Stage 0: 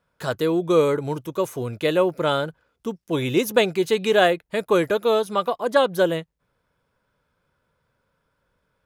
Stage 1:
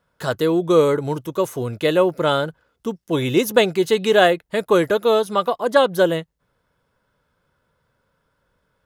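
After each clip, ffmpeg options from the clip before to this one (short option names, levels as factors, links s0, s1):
-af "bandreject=f=2400:w=14,volume=1.41"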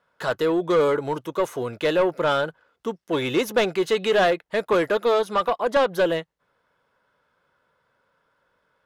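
-filter_complex "[0:a]asplit=2[s0][s1];[s1]highpass=f=720:p=1,volume=8.91,asoftclip=type=tanh:threshold=0.891[s2];[s0][s2]amix=inputs=2:normalize=0,lowpass=f=2400:p=1,volume=0.501,volume=0.355"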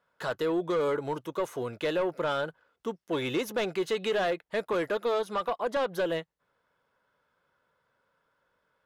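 -af "alimiter=limit=0.158:level=0:latency=1:release=149,volume=0.531"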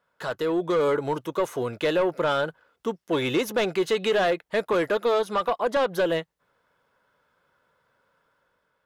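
-af "dynaudnorm=f=130:g=9:m=1.58,volume=1.19"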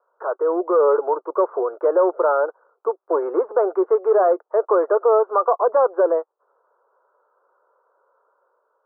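-af "asuperpass=centerf=700:order=12:qfactor=0.72,volume=2.24"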